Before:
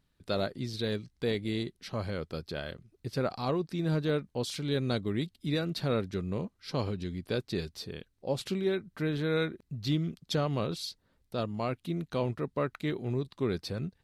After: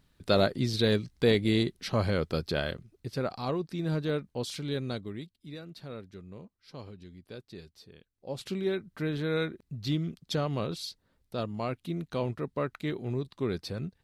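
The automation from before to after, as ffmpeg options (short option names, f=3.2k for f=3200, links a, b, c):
-af "volume=19dB,afade=t=out:st=2.63:d=0.46:silence=0.398107,afade=t=out:st=4.59:d=0.76:silence=0.266073,afade=t=in:st=8.12:d=0.49:silence=0.251189"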